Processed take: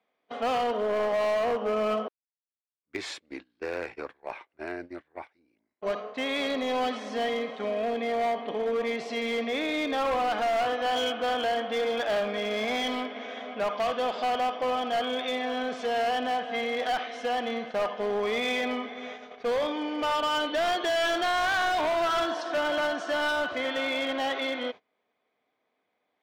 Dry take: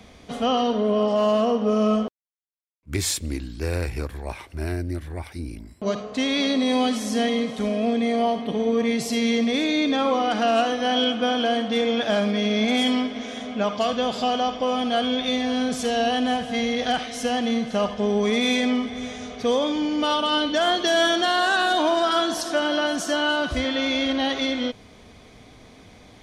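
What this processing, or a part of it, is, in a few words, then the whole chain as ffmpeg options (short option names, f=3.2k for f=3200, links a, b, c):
walkie-talkie: -af "highpass=480,lowpass=2.4k,asoftclip=type=hard:threshold=-23.5dB,agate=range=-24dB:threshold=-39dB:ratio=16:detection=peak"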